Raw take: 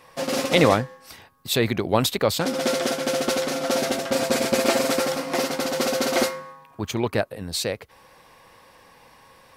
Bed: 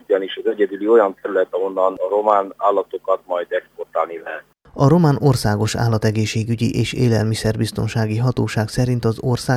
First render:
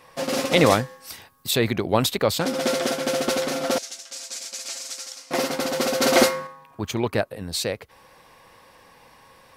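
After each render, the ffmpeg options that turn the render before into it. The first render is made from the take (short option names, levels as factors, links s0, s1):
-filter_complex "[0:a]asettb=1/sr,asplit=3[s0][s1][s2];[s0]atrim=end=0.664[s3];[s1]atrim=start=0.66:end=1.51,asetpts=PTS-STARTPTS,afade=t=in:d=0.004:c=qsin,afade=t=out:st=0.846:d=0.004:c=qsin,highshelf=f=4000:g=9[s4];[s2]atrim=start=1.506[s5];[s3][s4]acrossfade=d=0.004:c1=hsin:c2=qsin[s6];[s6][s5]acrossfade=d=0.004:c1=qsin:c2=hsin,asettb=1/sr,asplit=3[s7][s8][s9];[s7]atrim=end=3.784[s10];[s8]atrim=start=3.78:end=5.31,asetpts=PTS-STARTPTS,afade=t=in:d=0.004:c=qsin,afade=t=out:st=1.526:d=0.004:c=qsin,bandpass=f=6500:t=q:w=1.9[s11];[s9]atrim=start=5.306[s12];[s10][s11]acrossfade=d=0.004:c1=hsin:c2=qsin[s13];[s13][s12]acrossfade=d=0.004:c1=qsin:c2=hsin,asplit=3[s14][s15][s16];[s14]atrim=end=6.022[s17];[s15]atrim=start=6.018:end=6.472,asetpts=PTS-STARTPTS,volume=1.78[s18];[s16]atrim=start=6.468[s19];[s17][s18]acrossfade=d=0.004:c1=hsin:c2=hsin[s20];[s20][s19]acrossfade=d=0.004:c1=hsin:c2=hsin"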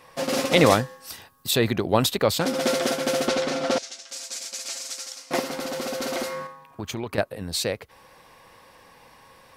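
-filter_complex "[0:a]asettb=1/sr,asplit=3[s0][s1][s2];[s0]atrim=end=0.744[s3];[s1]atrim=start=0.74:end=2.18,asetpts=PTS-STARTPTS,afade=t=in:d=0.004:c=qsin,afade=t=out:st=1.436:d=0.004:c=qsin,bandreject=f=2200:w=12[s4];[s2]atrim=start=2.176[s5];[s3][s4]acrossfade=d=0.004:c1=hsin:c2=qsin[s6];[s6][s5]acrossfade=d=0.004:c1=qsin:c2=hsin,asettb=1/sr,asplit=3[s7][s8][s9];[s7]atrim=end=3.284[s10];[s8]atrim=start=3.28:end=4.09,asetpts=PTS-STARTPTS,afade=t=in:d=0.004:c=qsin,afade=t=out:st=0.806:d=0.004:c=qsin,lowpass=6300[s11];[s9]atrim=start=4.086[s12];[s10][s11]acrossfade=d=0.004:c1=hsin:c2=qsin[s13];[s13][s12]acrossfade=d=0.004:c1=qsin:c2=hsin,asettb=1/sr,asplit=3[s14][s15][s16];[s14]atrim=end=5.394[s17];[s15]atrim=start=5.39:end=7.18,asetpts=PTS-STARTPTS,afade=t=in:d=0.004:c=qsin,afade=t=out:st=1.786:d=0.004:c=qsin,acompressor=threshold=0.0447:ratio=4:attack=3.2:release=140:knee=1:detection=peak[s18];[s16]atrim=start=7.176[s19];[s17][s18]acrossfade=d=0.004:c1=hsin:c2=qsin[s20];[s20][s19]acrossfade=d=0.004:c1=qsin:c2=hsin"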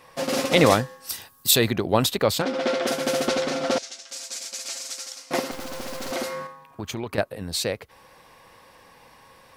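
-filter_complex "[0:a]asettb=1/sr,asplit=3[s0][s1][s2];[s0]atrim=end=1.094[s3];[s1]atrim=start=1.09:end=1.66,asetpts=PTS-STARTPTS,afade=t=in:d=0.004:c=qsin,afade=t=out:st=0.566:d=0.004:c=qsin,highshelf=f=4000:g=10[s4];[s2]atrim=start=1.656[s5];[s3][s4]acrossfade=d=0.004:c1=hsin:c2=qsin[s6];[s6][s5]acrossfade=d=0.004:c1=qsin:c2=hsin,asplit=3[s7][s8][s9];[s7]afade=t=out:st=2.41:d=0.02[s10];[s8]highpass=230,lowpass=3700,afade=t=in:st=2.41:d=0.02,afade=t=out:st=2.86:d=0.02[s11];[s9]afade=t=in:st=2.86:d=0.02[s12];[s10][s11][s12]amix=inputs=3:normalize=0,asettb=1/sr,asplit=3[s13][s14][s15];[s13]atrim=end=5.514[s16];[s14]atrim=start=5.51:end=6.11,asetpts=PTS-STARTPTS,afade=t=in:d=0.004:c=qsin,afade=t=out:st=0.596:d=0.004:c=qsin,acrusher=bits=4:dc=4:mix=0:aa=0.000001[s17];[s15]atrim=start=6.106[s18];[s16][s17]acrossfade=d=0.004:c1=hsin:c2=qsin[s19];[s19][s18]acrossfade=d=0.004:c1=qsin:c2=hsin"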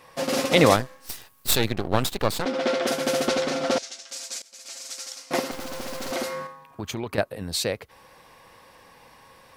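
-filter_complex "[0:a]asettb=1/sr,asplit=3[s0][s1][s2];[s0]atrim=end=0.764[s3];[s1]atrim=start=0.76:end=2.46,asetpts=PTS-STARTPTS,afade=t=in:d=0.004:c=qsin,afade=t=out:st=1.696:d=0.004:c=qsin,aeval=exprs='max(val(0),0)':c=same[s4];[s2]atrim=start=2.456[s5];[s3][s4]acrossfade=d=0.004:c1=hsin:c2=qsin[s6];[s6][s5]acrossfade=d=0.004:c1=qsin:c2=hsin,asplit=2[s7][s8];[s7]atrim=end=4.42,asetpts=PTS-STARTPTS,afade=t=out:st=4.416:d=0.004:c=hsin:silence=0.0668344[s9];[s8]atrim=start=4.42,asetpts=PTS-STARTPTS,afade=t=in:d=0.67:silence=0.0668344[s10];[s9][s10]concat=n=2:v=0:a=1"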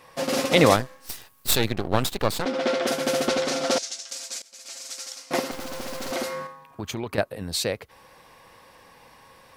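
-filter_complex "[0:a]asettb=1/sr,asplit=3[s0][s1][s2];[s0]atrim=end=3.454[s3];[s1]atrim=start=3.45:end=4.13,asetpts=PTS-STARTPTS,afade=t=in:d=0.004:c=qsin,afade=t=out:st=0.676:d=0.004:c=qsin,bass=f=250:g=-3,treble=f=4000:g=7[s4];[s2]atrim=start=4.126[s5];[s3][s4]acrossfade=d=0.004:c1=hsin:c2=qsin[s6];[s6][s5]acrossfade=d=0.004:c1=qsin:c2=hsin"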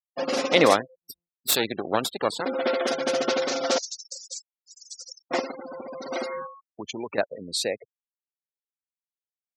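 -af "afftfilt=real='re*gte(hypot(re,im),0.0316)':imag='im*gte(hypot(re,im),0.0316)':win_size=1024:overlap=0.75,highpass=260"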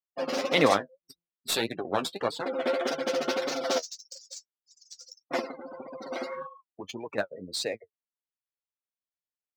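-af "adynamicsmooth=sensitivity=7:basefreq=4900,flanger=delay=6.1:depth=6.7:regen=31:speed=1.7:shape=triangular"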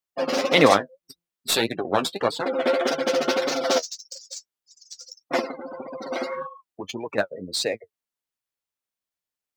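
-af "volume=2"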